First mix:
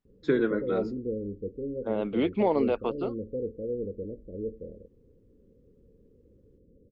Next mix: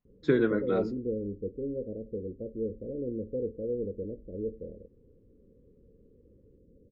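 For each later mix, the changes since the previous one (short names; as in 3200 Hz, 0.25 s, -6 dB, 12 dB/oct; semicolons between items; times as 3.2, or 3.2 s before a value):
first voice: remove HPF 160 Hz; second voice: muted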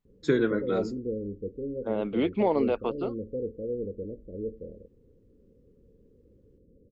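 first voice: remove air absorption 190 m; second voice: unmuted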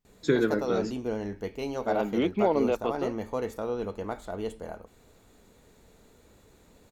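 background: remove Chebyshev low-pass 550 Hz, order 8; master: add bell 13000 Hz +6 dB 1.9 oct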